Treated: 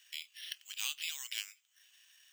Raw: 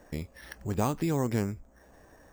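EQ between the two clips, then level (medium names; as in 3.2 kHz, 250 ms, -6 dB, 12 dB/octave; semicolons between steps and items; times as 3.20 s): ladder high-pass 2.8 kHz, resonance 75%; +13.5 dB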